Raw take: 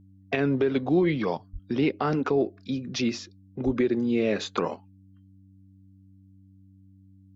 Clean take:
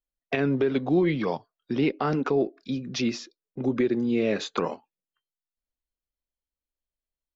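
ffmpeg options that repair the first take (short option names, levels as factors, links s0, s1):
-filter_complex "[0:a]bandreject=f=96:t=h:w=4,bandreject=f=192:t=h:w=4,bandreject=f=288:t=h:w=4,asplit=3[s0][s1][s2];[s0]afade=t=out:st=1.52:d=0.02[s3];[s1]highpass=f=140:w=0.5412,highpass=f=140:w=1.3066,afade=t=in:st=1.52:d=0.02,afade=t=out:st=1.64:d=0.02[s4];[s2]afade=t=in:st=1.64:d=0.02[s5];[s3][s4][s5]amix=inputs=3:normalize=0,asplit=3[s6][s7][s8];[s6]afade=t=out:st=3.65:d=0.02[s9];[s7]highpass=f=140:w=0.5412,highpass=f=140:w=1.3066,afade=t=in:st=3.65:d=0.02,afade=t=out:st=3.77:d=0.02[s10];[s8]afade=t=in:st=3.77:d=0.02[s11];[s9][s10][s11]amix=inputs=3:normalize=0"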